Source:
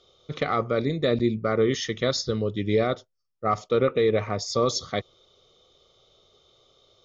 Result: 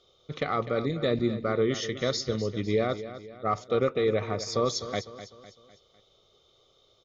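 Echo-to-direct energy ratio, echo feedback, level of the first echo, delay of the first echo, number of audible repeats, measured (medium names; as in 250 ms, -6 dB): -12.0 dB, 45%, -13.0 dB, 252 ms, 4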